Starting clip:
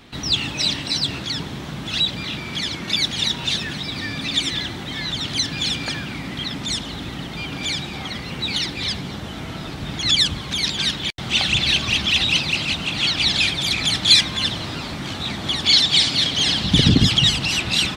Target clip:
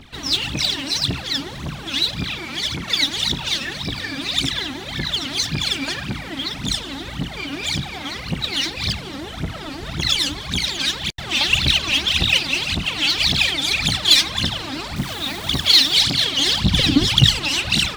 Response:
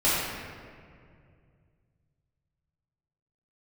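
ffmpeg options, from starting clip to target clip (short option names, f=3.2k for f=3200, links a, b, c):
-filter_complex "[0:a]asoftclip=type=tanh:threshold=-6dB,aphaser=in_gain=1:out_gain=1:delay=3.9:decay=0.79:speed=1.8:type=triangular,asettb=1/sr,asplit=3[a][b][c];[a]atrim=end=14.964[d];[b]atrim=start=14.96:end=15.96,asetpts=PTS-STARTPTS,afade=t=in:d=0.004:c=qsin,afade=t=out:st=0.996:d=0.004:c=qsin,acrusher=bits=6:dc=4:mix=0:aa=0.000001[e];[c]atrim=start=15.956[f];[d][e]acrossfade=d=0.004:c1=hsin:c2=qsin[g];[g][f]acrossfade=d=0.004:c1=qsin:c2=hsin,volume=-3dB"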